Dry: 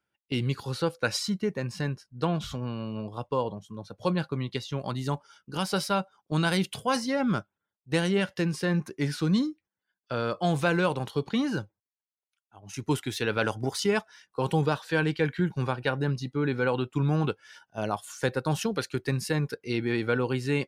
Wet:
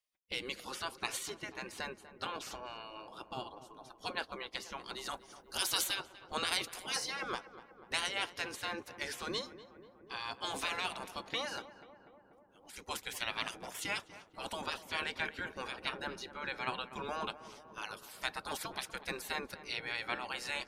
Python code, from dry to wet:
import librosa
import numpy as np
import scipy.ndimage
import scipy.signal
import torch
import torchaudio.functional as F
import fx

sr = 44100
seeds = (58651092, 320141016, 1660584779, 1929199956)

y = fx.spec_gate(x, sr, threshold_db=-15, keep='weak')
y = fx.high_shelf(y, sr, hz=fx.line((5.09, 5900.0), (5.94, 3500.0)), db=10.0, at=(5.09, 5.94), fade=0.02)
y = fx.echo_filtered(y, sr, ms=244, feedback_pct=75, hz=1500.0, wet_db=-13.5)